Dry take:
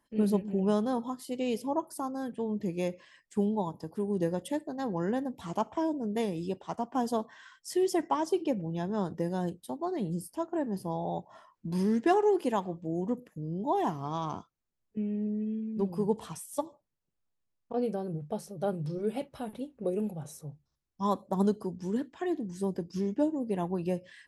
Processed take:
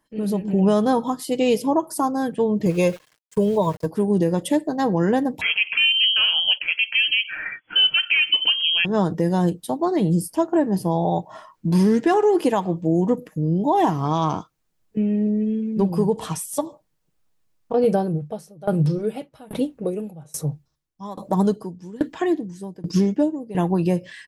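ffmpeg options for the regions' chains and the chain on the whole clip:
-filter_complex "[0:a]asettb=1/sr,asplit=3[a][b][c];[a]atrim=end=2.664[d];[b]atrim=start=2.66:end=3.86,asetpts=PTS-STARTPTS,afade=t=in:d=0.004:c=qsin,afade=t=out:st=1.196:d=0.004:c=qsin,aecho=1:1:1.9:0.8,atrim=end_sample=52920,aeval=exprs='val(0)*gte(abs(val(0)),0.00335)':c=same,agate=range=-13dB:threshold=-52dB:ratio=16:release=100:detection=peak[e];[c]atrim=start=3.856[f];[d][e]acrossfade=d=0.004:c1=hsin:c2=qsin[g];[g][f]acrossfade=d=0.004:c1=qsin:c2=hsin,asettb=1/sr,asplit=3[h][i][j];[h]atrim=end=5.414[k];[i]atrim=start=5.41:end=8.85,asetpts=PTS-STARTPTS,afade=t=in:d=0.004:c=qsin,afade=t=out:st=3.436:d=0.004:c=qsin,equalizer=f=1.1k:w=0.49:g=12,lowpass=f=2.9k:t=q:w=0.5098,lowpass=f=2.9k:t=q:w=0.6013,lowpass=f=2.9k:t=q:w=0.9,lowpass=f=2.9k:t=q:w=2.563,afreqshift=-3400[l];[j]atrim=start=8.846[m];[k][l]acrossfade=d=0.004:c1=hsin:c2=qsin[n];[n][m]acrossfade=d=0.004:c1=qsin:c2=hsin,asettb=1/sr,asplit=3[o][p][q];[o]atrim=end=17.844[r];[p]atrim=start=17.84:end=23.55,asetpts=PTS-STARTPTS,afade=t=in:d=0.004:c=qsin,afade=t=out:st=5.706:d=0.004:c=qsin,acontrast=77,aeval=exprs='val(0)*pow(10,-27*if(lt(mod(1.2*n/s,1),2*abs(1.2)/1000),1-mod(1.2*n/s,1)/(2*abs(1.2)/1000),(mod(1.2*n/s,1)-2*abs(1.2)/1000)/(1-2*abs(1.2)/1000))/20)':c=same[s];[q]atrim=start=23.546[t];[r][s]acrossfade=d=0.004:c1=hsin:c2=qsin[u];[u][t]acrossfade=d=0.004:c1=qsin:c2=hsin,aecho=1:1:6.4:0.33,alimiter=limit=-22.5dB:level=0:latency=1:release=119,dynaudnorm=f=240:g=3:m=9dB,volume=3.5dB"

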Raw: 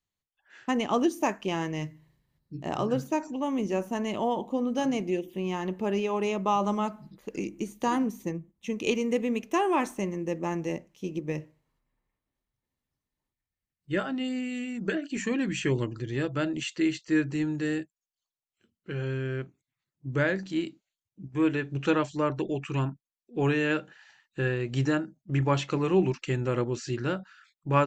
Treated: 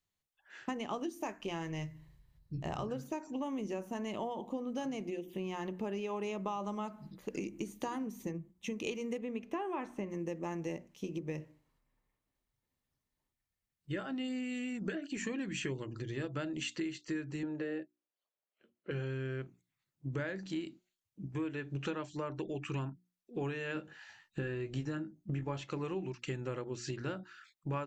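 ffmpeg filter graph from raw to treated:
-filter_complex "[0:a]asettb=1/sr,asplit=3[a][b][c];[a]atrim=end=0.884[d];[b]atrim=start=0.88:end=2.83,asetpts=PTS-STARTPTS,afade=t=in:d=0.004:c=qsin,afade=t=out:st=1.946:d=0.004:c=qsin,asubboost=boost=11:cutoff=100,asplit=2[e][f];[f]adelay=18,volume=-13dB[g];[e][g]amix=inputs=2:normalize=0,atrim=end_sample=85995[h];[c]atrim=start=2.826[i];[d][h]acrossfade=d=0.004:c1=hsin:c2=qsin[j];[j][i]acrossfade=d=0.004:c1=qsin:c2=hsin,asettb=1/sr,asplit=3[k][l][m];[k]atrim=end=9.184[n];[l]atrim=start=9.18:end=10.1,asetpts=PTS-STARTPTS,afade=t=in:d=0.004:c=qsin,afade=t=out:st=0.916:d=0.004:c=qsin,acrossover=split=3600[o][p];[p]acompressor=threshold=-51dB:ratio=4:attack=1:release=60[q];[o][q]amix=inputs=2:normalize=0,highshelf=f=5k:g=-11[r];[m]atrim=start=10.096[s];[n][r]acrossfade=d=0.004:c1=hsin:c2=qsin[t];[t][s]acrossfade=d=0.004:c1=qsin:c2=hsin,asettb=1/sr,asplit=3[u][v][w];[u]atrim=end=17.434[x];[v]atrim=start=17.43:end=18.91,asetpts=PTS-STARTPTS,afade=t=in:d=0.004:c=qsin,afade=t=out:st=1.476:d=0.004:c=qsin,highpass=220,lowpass=2.8k,equalizer=f=560:t=o:w=0.61:g=10[y];[w]atrim=start=18.906[z];[x][y]acrossfade=d=0.004:c1=hsin:c2=qsin[aa];[aa][z]acrossfade=d=0.004:c1=qsin:c2=hsin,asettb=1/sr,asplit=3[ab][ac][ad];[ab]atrim=end=23.754[ae];[ac]atrim=start=23.75:end=25.64,asetpts=PTS-STARTPTS,afade=t=in:d=0.004:c=qsin,afade=t=out:st=1.886:d=0.004:c=qsin,lowshelf=f=250:g=8,asplit=2[af][ag];[ag]adelay=19,volume=-6dB[ah];[af][ah]amix=inputs=2:normalize=0,atrim=end_sample=83349[ai];[ad]atrim=start=25.636[aj];[ae][ai]acrossfade=d=0.004:c1=hsin:c2=qsin[ak];[ak][aj]acrossfade=d=0.004:c1=qsin:c2=hsin,acompressor=threshold=-34dB:ratio=12,bandreject=f=60:t=h:w=6,bandreject=f=120:t=h:w=6,bandreject=f=180:t=h:w=6,bandreject=f=240:t=h:w=6,bandreject=f=300:t=h:w=6,bandreject=f=360:t=h:w=6"

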